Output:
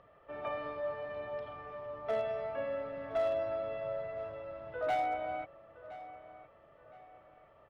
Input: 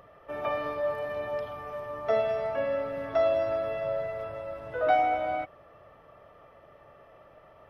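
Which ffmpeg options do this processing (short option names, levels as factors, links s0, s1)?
-filter_complex "[0:a]lowpass=f=4400:w=0.5412,lowpass=f=4400:w=1.3066,asoftclip=type=hard:threshold=0.106,asplit=2[s0][s1];[s1]adelay=1016,lowpass=f=3400:p=1,volume=0.168,asplit=2[s2][s3];[s3]adelay=1016,lowpass=f=3400:p=1,volume=0.36,asplit=2[s4][s5];[s5]adelay=1016,lowpass=f=3400:p=1,volume=0.36[s6];[s0][s2][s4][s6]amix=inputs=4:normalize=0,volume=0.422"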